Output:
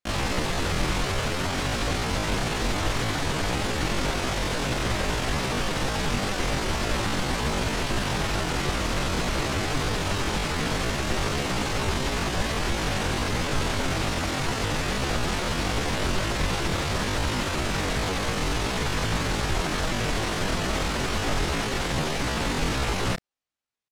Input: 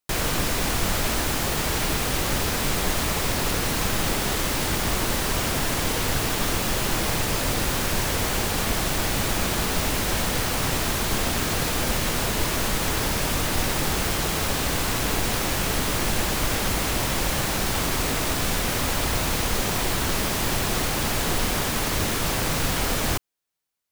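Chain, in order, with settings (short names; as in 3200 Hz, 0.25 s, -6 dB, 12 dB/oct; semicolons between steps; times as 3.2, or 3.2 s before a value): pitch shift +9.5 st; air absorption 69 m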